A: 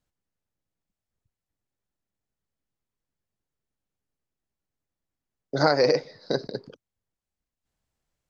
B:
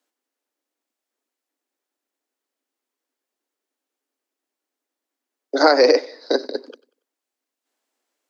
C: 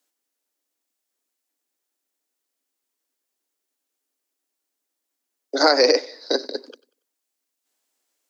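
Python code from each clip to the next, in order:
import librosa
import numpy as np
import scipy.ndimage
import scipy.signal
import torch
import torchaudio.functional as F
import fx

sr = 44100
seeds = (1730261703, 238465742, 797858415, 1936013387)

y1 = scipy.signal.sosfilt(scipy.signal.butter(12, 250.0, 'highpass', fs=sr, output='sos'), x)
y1 = fx.echo_feedback(y1, sr, ms=94, feedback_pct=38, wet_db=-22.0)
y1 = y1 * librosa.db_to_amplitude(7.0)
y2 = fx.high_shelf(y1, sr, hz=3600.0, db=11.0)
y2 = y2 * librosa.db_to_amplitude(-3.5)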